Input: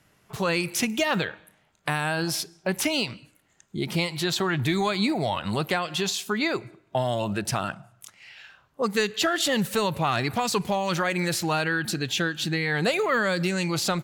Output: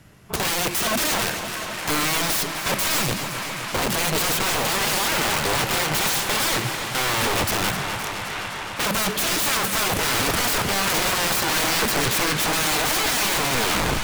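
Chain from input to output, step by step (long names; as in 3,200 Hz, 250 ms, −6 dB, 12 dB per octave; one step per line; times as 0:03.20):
turntable brake at the end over 0.71 s
low-shelf EQ 270 Hz +8.5 dB
brickwall limiter −17 dBFS, peak gain reduction 6.5 dB
wrap-around overflow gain 26 dB
delay with a band-pass on its return 689 ms, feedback 71%, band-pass 1,500 Hz, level −7.5 dB
feedback echo with a swinging delay time 258 ms, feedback 80%, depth 51 cents, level −10 dB
level +8 dB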